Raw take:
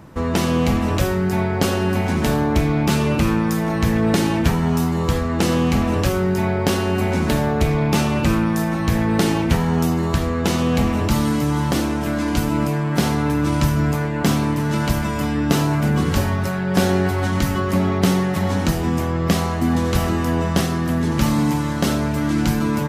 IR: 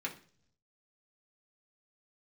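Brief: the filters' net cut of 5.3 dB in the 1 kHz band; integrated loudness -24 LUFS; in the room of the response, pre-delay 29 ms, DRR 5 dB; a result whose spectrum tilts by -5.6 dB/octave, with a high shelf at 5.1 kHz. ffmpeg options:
-filter_complex "[0:a]equalizer=f=1000:t=o:g=-7,highshelf=f=5100:g=5.5,asplit=2[s0][s1];[1:a]atrim=start_sample=2205,adelay=29[s2];[s1][s2]afir=irnorm=-1:irlink=0,volume=0.422[s3];[s0][s3]amix=inputs=2:normalize=0,volume=0.562"

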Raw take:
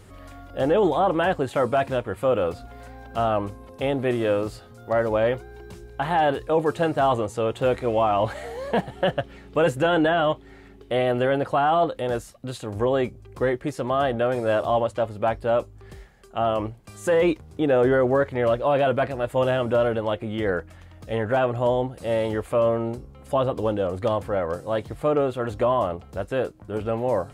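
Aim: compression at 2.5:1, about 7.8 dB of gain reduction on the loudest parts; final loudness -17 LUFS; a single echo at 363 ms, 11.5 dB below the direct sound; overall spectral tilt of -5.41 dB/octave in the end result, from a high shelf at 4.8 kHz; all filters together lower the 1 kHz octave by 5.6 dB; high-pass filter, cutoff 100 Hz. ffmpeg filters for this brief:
-af "highpass=100,equalizer=f=1000:t=o:g=-9,highshelf=f=4800:g=8,acompressor=threshold=0.0316:ratio=2.5,aecho=1:1:363:0.266,volume=5.62"

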